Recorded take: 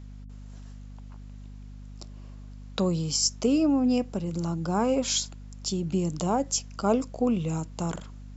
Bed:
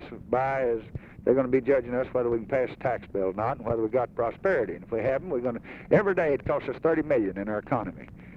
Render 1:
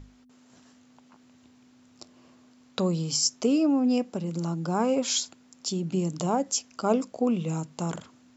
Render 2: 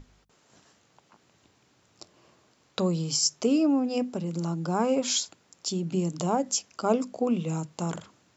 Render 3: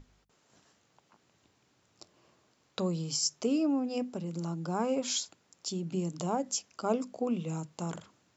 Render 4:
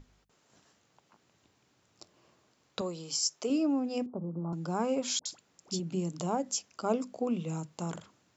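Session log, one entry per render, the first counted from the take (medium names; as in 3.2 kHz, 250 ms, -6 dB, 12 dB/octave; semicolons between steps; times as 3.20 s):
hum notches 50/100/150/200 Hz
hum notches 50/100/150/200/250 Hz
trim -5.5 dB
2.81–3.50 s: tone controls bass -14 dB, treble 0 dB; 4.06–4.53 s: steep low-pass 1.2 kHz 48 dB/octave; 5.19–5.80 s: phase dispersion highs, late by 66 ms, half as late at 980 Hz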